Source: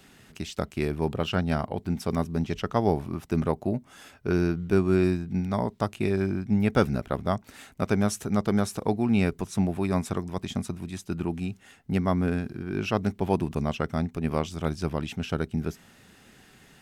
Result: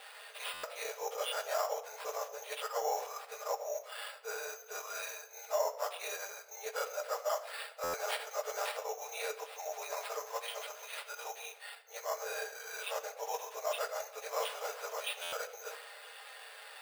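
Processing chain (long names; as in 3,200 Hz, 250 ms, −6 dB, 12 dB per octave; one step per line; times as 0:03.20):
random phases in long frames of 50 ms
reversed playback
downward compressor 10 to 1, threshold −32 dBFS, peak gain reduction 16 dB
reversed playback
harmonic and percussive parts rebalanced percussive −7 dB
decimation without filtering 7×
linear-phase brick-wall high-pass 440 Hz
rectangular room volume 3,700 cubic metres, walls furnished, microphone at 1.3 metres
buffer that repeats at 0:00.53/0:07.83/0:15.22, samples 512, times 8
level +8.5 dB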